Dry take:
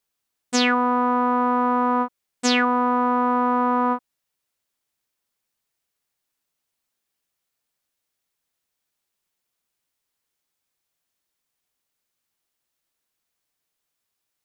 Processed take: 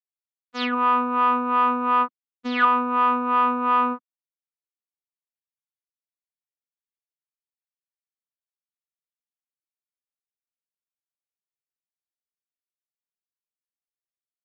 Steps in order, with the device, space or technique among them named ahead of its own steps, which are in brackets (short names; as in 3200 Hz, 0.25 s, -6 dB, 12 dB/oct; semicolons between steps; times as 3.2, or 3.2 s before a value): guitar amplifier with harmonic tremolo (harmonic tremolo 2.8 Hz, depth 70%, crossover 510 Hz; soft clip -18 dBFS, distortion -16 dB; speaker cabinet 94–3900 Hz, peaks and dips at 240 Hz -5 dB, 480 Hz -3 dB, 810 Hz -9 dB, 1200 Hz +6 dB); expander -24 dBFS; gain +6.5 dB